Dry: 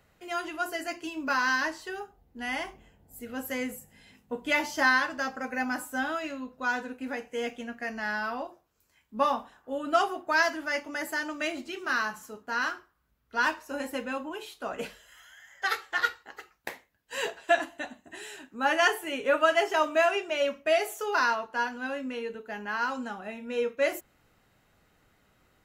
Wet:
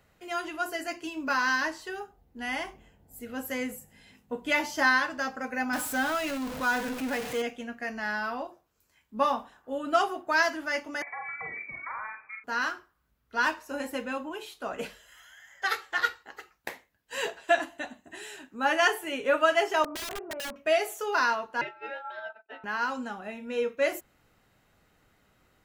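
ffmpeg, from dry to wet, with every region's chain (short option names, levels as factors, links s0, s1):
-filter_complex "[0:a]asettb=1/sr,asplit=3[s0][s1][s2];[s0]atrim=end=5.734[s3];[s1]atrim=start=5.73:end=7.42,asetpts=PTS-STARTPTS,afade=t=in:d=0.004:c=qsin,afade=t=out:st=1.686:d=0.004:c=qsin,aeval=exprs='val(0)+0.5*0.0266*sgn(val(0))':c=same,bandreject=f=360:w=5.4[s4];[s2]atrim=start=7.416[s5];[s3][s4]acrossfade=d=0.004:c1=hsin:c2=qsin[s6];[s6][s5]acrossfade=d=0.004:c1=qsin:c2=hsin,asettb=1/sr,asplit=3[s7][s8][s9];[s7]atrim=end=11.024[s10];[s8]atrim=start=11.02:end=12.44,asetpts=PTS-STARTPTS,afade=t=in:d=0.004:c=qsin,afade=t=out:st=1.416:d=0.004:c=qsin,acompressor=threshold=0.02:ratio=6:attack=3.2:release=140:knee=1:detection=peak,asplit=2[s11][s12];[s12]adelay=46,volume=0.501[s13];[s11][s13]amix=inputs=2:normalize=0,atrim=end_sample=62622,lowpass=f=2200:t=q:w=0.5098,lowpass=f=2200:t=q:w=0.6013,lowpass=f=2200:t=q:w=0.9,lowpass=f=2200:t=q:w=2.563,afreqshift=-2600[s14];[s9]atrim=start=12.436[s15];[s10][s14]acrossfade=d=0.004:c1=hsin:c2=qsin[s16];[s16][s15]acrossfade=d=0.004:c1=qsin:c2=hsin,asettb=1/sr,asplit=3[s17][s18][s19];[s17]atrim=end=19.844[s20];[s18]atrim=start=19.84:end=20.56,asetpts=PTS-STARTPTS,afade=t=in:d=0.004:c=qsin,afade=t=out:st=0.716:d=0.004:c=qsin,lowpass=f=1200:w=0.5412,lowpass=f=1200:w=1.3066,aeval=exprs='(mod(18.8*val(0)+1,2)-1)/18.8':c=same,acompressor=threshold=0.02:ratio=5:attack=3.2:release=140:knee=1:detection=peak[s21];[s19]atrim=start=20.556[s22];[s20][s21]acrossfade=d=0.004:c1=hsin:c2=qsin[s23];[s23][s22]acrossfade=d=0.004:c1=qsin:c2=hsin,asettb=1/sr,asplit=3[s24][s25][s26];[s24]atrim=end=21.614[s27];[s25]atrim=start=21.61:end=22.64,asetpts=PTS-STARTPTS,afade=t=in:d=0.004:c=qsin,afade=t=out:st=1.026:d=0.004:c=qsin,agate=range=0.0224:threshold=0.02:ratio=3:release=100:detection=peak,aeval=exprs='val(0)*sin(2*PI*1100*n/s)':c=same,highpass=350,lowpass=2400[s28];[s26]atrim=start=22.636[s29];[s27][s28]acrossfade=d=0.004:c1=hsin:c2=qsin[s30];[s30][s29]acrossfade=d=0.004:c1=qsin:c2=hsin"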